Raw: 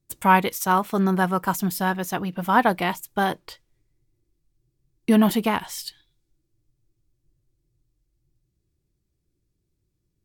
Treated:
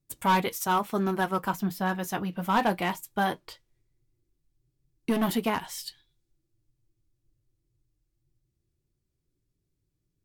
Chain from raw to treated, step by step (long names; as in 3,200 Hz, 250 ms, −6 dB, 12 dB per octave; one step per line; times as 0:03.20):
0:01.48–0:01.89: parametric band 9,700 Hz −10 dB 1.7 octaves
gain into a clipping stage and back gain 14 dB
flanger 0.2 Hz, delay 6.9 ms, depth 2.9 ms, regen −55%